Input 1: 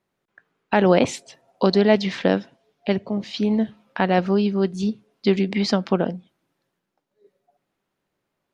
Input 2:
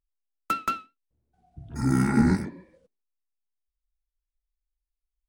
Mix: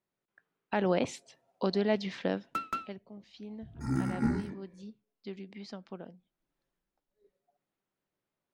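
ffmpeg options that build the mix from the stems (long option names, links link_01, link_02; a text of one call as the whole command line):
ffmpeg -i stem1.wav -i stem2.wav -filter_complex "[0:a]volume=0.5dB,afade=type=out:start_time=2.25:duration=0.72:silence=0.266073,afade=type=in:start_time=6.24:duration=0.37:silence=0.237137,asplit=2[link_01][link_02];[1:a]highshelf=frequency=6700:gain=-7.5,adelay=2050,volume=-7dB[link_03];[link_02]apad=whole_len=323392[link_04];[link_03][link_04]sidechaincompress=threshold=-46dB:ratio=3:attack=36:release=110[link_05];[link_01][link_05]amix=inputs=2:normalize=0" out.wav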